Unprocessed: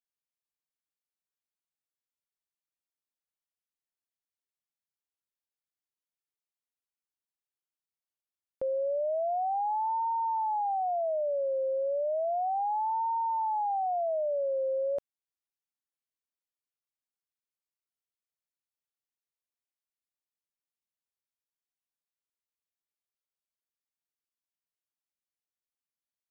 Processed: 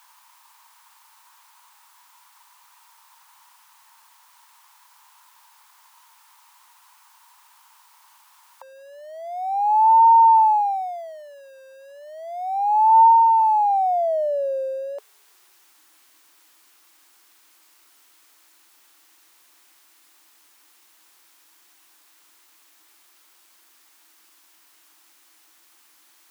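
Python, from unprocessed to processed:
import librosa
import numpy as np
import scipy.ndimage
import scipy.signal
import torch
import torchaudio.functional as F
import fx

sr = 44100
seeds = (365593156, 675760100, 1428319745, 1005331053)

y = x + 0.5 * 10.0 ** (-46.5 / 20.0) * np.sign(x)
y = fx.filter_sweep_highpass(y, sr, from_hz=940.0, to_hz=320.0, start_s=12.9, end_s=15.77, q=6.8)
y = fx.low_shelf_res(y, sr, hz=670.0, db=-10.5, q=1.5)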